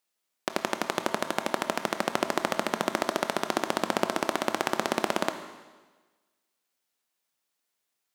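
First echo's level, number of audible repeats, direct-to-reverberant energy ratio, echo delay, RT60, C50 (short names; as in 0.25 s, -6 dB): none, none, 8.0 dB, none, 1.3 s, 10.0 dB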